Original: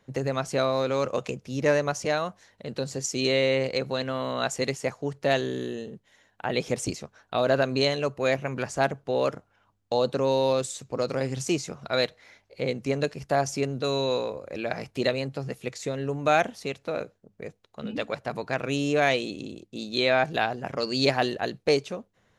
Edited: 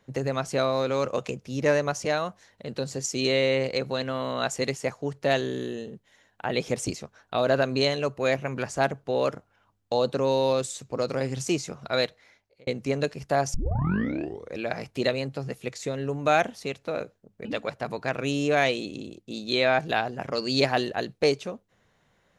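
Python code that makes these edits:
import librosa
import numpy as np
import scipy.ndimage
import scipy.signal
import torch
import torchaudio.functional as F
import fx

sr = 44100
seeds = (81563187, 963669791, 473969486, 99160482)

y = fx.edit(x, sr, fx.fade_out_span(start_s=11.99, length_s=0.68),
    fx.tape_start(start_s=13.54, length_s=1.03),
    fx.cut(start_s=17.45, length_s=0.45), tone=tone)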